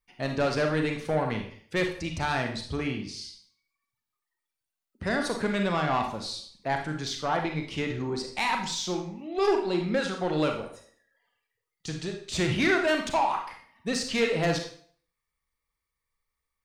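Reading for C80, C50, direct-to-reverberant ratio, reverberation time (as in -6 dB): 10.5 dB, 6.5 dB, 3.0 dB, 0.50 s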